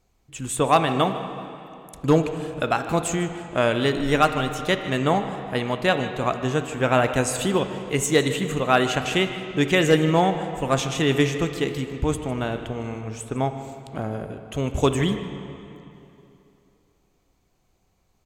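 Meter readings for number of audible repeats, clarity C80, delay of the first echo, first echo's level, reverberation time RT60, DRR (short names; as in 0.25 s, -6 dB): 1, 9.0 dB, 0.153 s, -16.0 dB, 2.9 s, 7.5 dB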